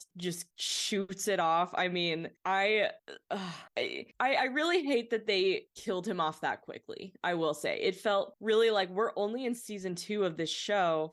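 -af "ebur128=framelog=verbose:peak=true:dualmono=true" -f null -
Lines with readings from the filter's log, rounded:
Integrated loudness:
  I:         -28.6 LUFS
  Threshold: -38.8 LUFS
Loudness range:
  LRA:         1.4 LU
  Threshold: -48.7 LUFS
  LRA low:   -29.7 LUFS
  LRA high:  -28.2 LUFS
True peak:
  Peak:      -15.2 dBFS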